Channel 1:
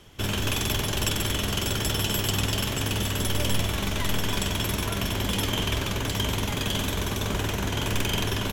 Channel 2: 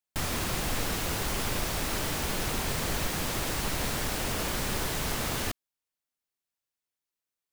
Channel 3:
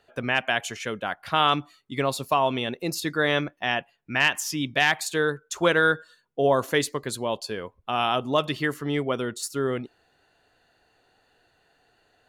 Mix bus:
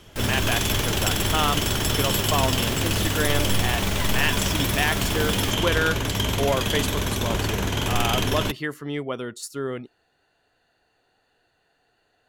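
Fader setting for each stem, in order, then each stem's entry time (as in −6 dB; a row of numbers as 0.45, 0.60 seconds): +2.5, −1.0, −3.0 decibels; 0.00, 0.00, 0.00 seconds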